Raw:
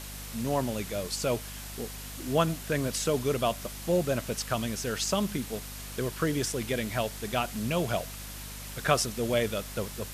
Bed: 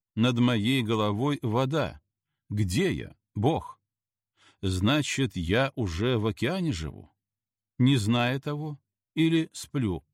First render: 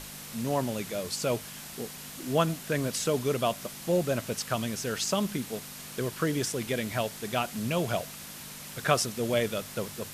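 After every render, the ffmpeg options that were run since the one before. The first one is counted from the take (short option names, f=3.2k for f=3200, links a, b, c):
-af "bandreject=f=50:t=h:w=6,bandreject=f=100:t=h:w=6"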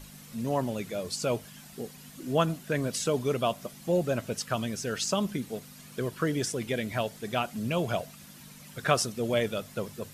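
-af "afftdn=nr=10:nf=-43"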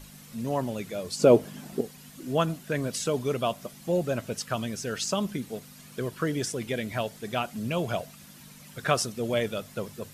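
-filter_complex "[0:a]asettb=1/sr,asplit=3[a][b][c];[a]atrim=end=1.194[d];[b]atrim=start=1.19:end=1.81,asetpts=PTS-STARTPTS,afade=t=in:d=0.004:c=qsin,afade=t=out:st=0.616:d=0.004:c=qsin,equalizer=f=360:w=0.52:g=15[e];[c]atrim=start=1.806[f];[d][e]acrossfade=d=0.004:c1=hsin:c2=qsin[g];[g][f]acrossfade=d=0.004:c1=qsin:c2=hsin"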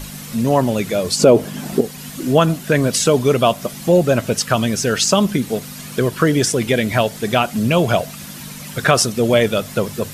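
-filter_complex "[0:a]asplit=2[a][b];[b]acompressor=threshold=-34dB:ratio=6,volume=-3dB[c];[a][c]amix=inputs=2:normalize=0,alimiter=level_in=11.5dB:limit=-1dB:release=50:level=0:latency=1"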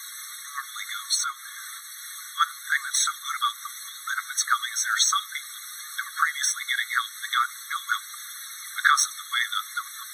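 -filter_complex "[0:a]acrossover=split=110|900|6900[a][b][c][d];[d]asoftclip=type=tanh:threshold=-22.5dB[e];[a][b][c][e]amix=inputs=4:normalize=0,afftfilt=real='re*eq(mod(floor(b*sr/1024/1100),2),1)':imag='im*eq(mod(floor(b*sr/1024/1100),2),1)':win_size=1024:overlap=0.75"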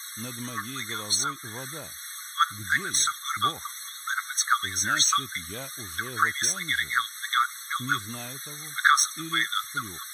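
-filter_complex "[1:a]volume=-15dB[a];[0:a][a]amix=inputs=2:normalize=0"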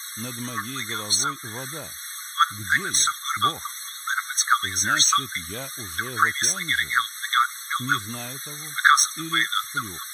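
-af "volume=3.5dB"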